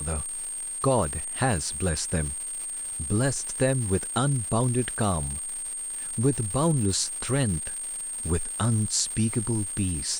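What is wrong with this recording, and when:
crackle 370/s -33 dBFS
tone 8600 Hz -31 dBFS

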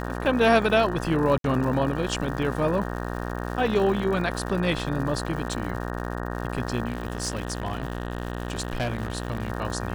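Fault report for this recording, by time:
buzz 60 Hz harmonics 31 -31 dBFS
crackle 200/s -34 dBFS
1.38–1.44 gap 62 ms
6.88–9.5 clipped -22.5 dBFS

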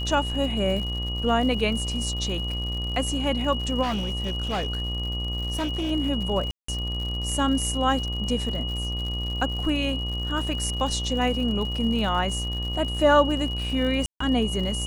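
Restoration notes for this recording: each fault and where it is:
buzz 60 Hz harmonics 21 -30 dBFS
crackle 110/s -33 dBFS
tone 2900 Hz -31 dBFS
3.82–5.92 clipped -23 dBFS
6.51–6.68 gap 0.174 s
14.06–14.2 gap 0.144 s

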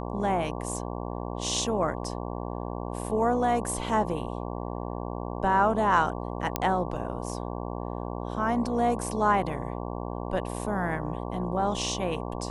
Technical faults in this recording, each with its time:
buzz 60 Hz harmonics 19 -34 dBFS
6.56 pop -9 dBFS

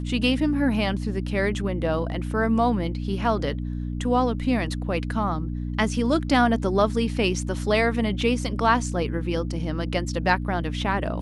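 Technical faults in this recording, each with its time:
hum 60 Hz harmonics 5 -29 dBFS

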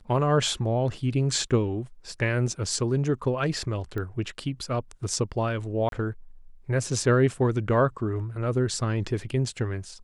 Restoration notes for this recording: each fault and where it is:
3.98 pop -21 dBFS
5.89–5.92 gap 32 ms

